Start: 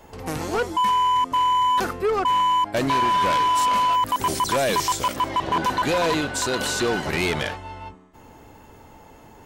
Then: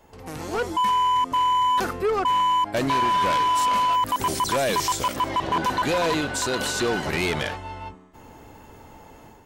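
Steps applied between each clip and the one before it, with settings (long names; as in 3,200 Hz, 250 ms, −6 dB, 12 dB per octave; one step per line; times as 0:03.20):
brickwall limiter −19.5 dBFS, peak gain reduction 4.5 dB
automatic gain control gain up to 8 dB
level −7 dB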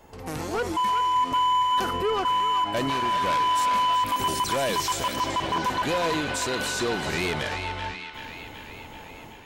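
brickwall limiter −24 dBFS, peak gain reduction 5.5 dB
feedback echo with a band-pass in the loop 382 ms, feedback 70%, band-pass 2,600 Hz, level −5 dB
level +2.5 dB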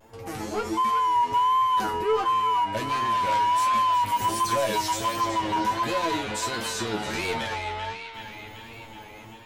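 tuned comb filter 110 Hz, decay 0.17 s, harmonics all, mix 100%
pitch vibrato 1.4 Hz 67 cents
level +6 dB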